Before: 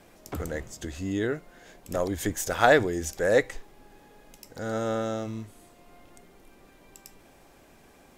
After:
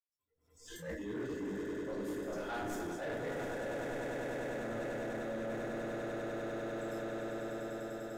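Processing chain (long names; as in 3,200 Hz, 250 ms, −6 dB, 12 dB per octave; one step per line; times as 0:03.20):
slices reordered back to front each 223 ms, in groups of 2
convolution reverb RT60 1.0 s, pre-delay 76 ms
noise reduction from a noise print of the clip's start 26 dB
echo that builds up and dies away 99 ms, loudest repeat 8, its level −10 dB
reversed playback
downward compressor 12 to 1, threshold −47 dBFS, peak gain reduction 22 dB
reversed playback
leveller curve on the samples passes 2
level that may rise only so fast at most 100 dB per second
level +6 dB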